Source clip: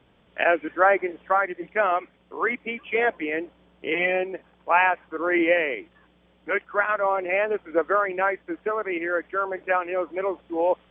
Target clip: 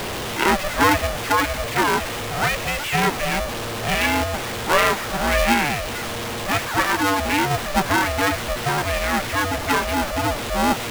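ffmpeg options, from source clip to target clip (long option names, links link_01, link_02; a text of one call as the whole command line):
ffmpeg -i in.wav -af "aeval=exprs='val(0)+0.5*0.0794*sgn(val(0))':channel_layout=same,aeval=exprs='val(0)*sgn(sin(2*PI*290*n/s))':channel_layout=same" out.wav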